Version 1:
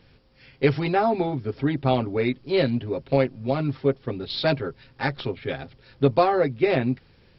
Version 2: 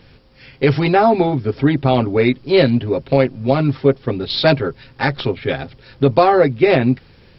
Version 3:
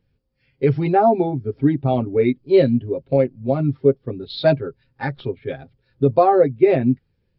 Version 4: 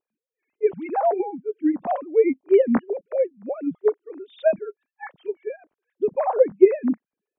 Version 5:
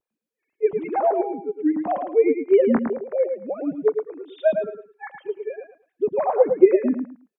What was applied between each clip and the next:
boost into a limiter +10 dB; level −1 dB
every bin expanded away from the loudest bin 1.5 to 1; level −1 dB
three sine waves on the formant tracks; gain on a spectral selection 0:01.76–0:02.47, 530–1,100 Hz +7 dB; level −4 dB
pitch vibrato 0.58 Hz 23 cents; repeating echo 109 ms, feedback 21%, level −6.5 dB

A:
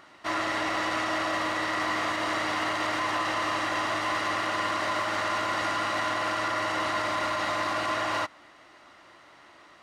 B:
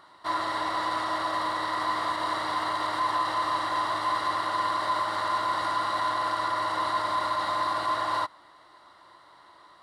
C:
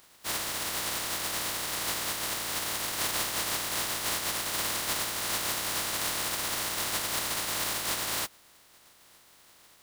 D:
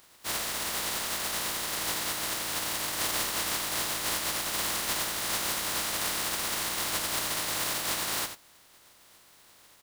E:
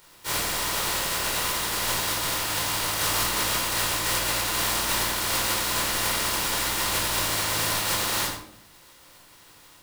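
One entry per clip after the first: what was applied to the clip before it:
thirty-one-band graphic EQ 250 Hz −7 dB, 1,000 Hz +10 dB, 2,500 Hz −12 dB, 4,000 Hz +8 dB, 6,300 Hz −8 dB, 10,000 Hz +6 dB; level −3.5 dB
compressing power law on the bin magnitudes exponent 0.15; level −3.5 dB
single-tap delay 87 ms −9.5 dB
rectangular room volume 810 cubic metres, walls furnished, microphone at 4.6 metres

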